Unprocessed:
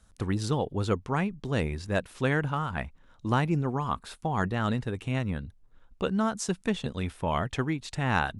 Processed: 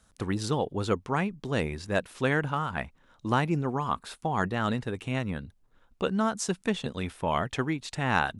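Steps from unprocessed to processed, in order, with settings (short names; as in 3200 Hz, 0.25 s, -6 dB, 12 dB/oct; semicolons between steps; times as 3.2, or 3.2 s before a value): low shelf 110 Hz -9.5 dB; gain +1.5 dB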